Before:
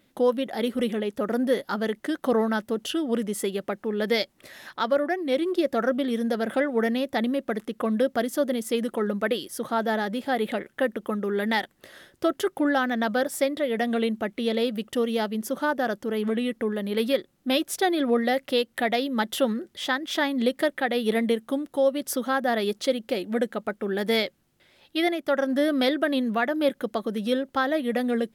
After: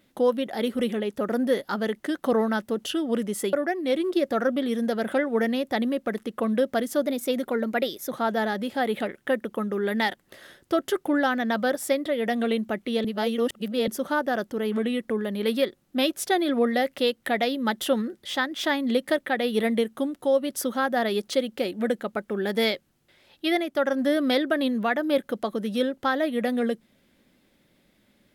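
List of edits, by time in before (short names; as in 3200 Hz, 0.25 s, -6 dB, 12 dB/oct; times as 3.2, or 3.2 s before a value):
3.53–4.95 cut
8.48–9.63 speed 109%
14.56–15.39 reverse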